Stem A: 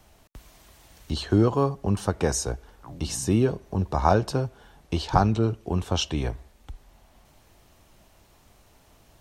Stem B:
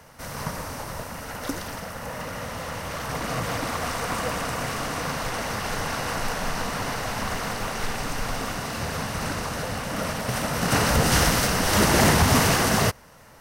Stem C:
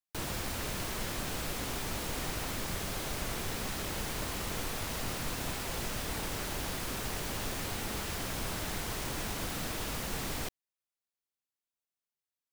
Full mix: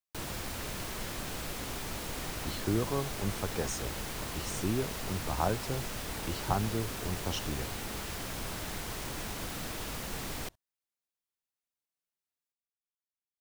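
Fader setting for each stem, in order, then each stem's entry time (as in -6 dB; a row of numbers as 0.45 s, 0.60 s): -10.5 dB, mute, -2.0 dB; 1.35 s, mute, 0.00 s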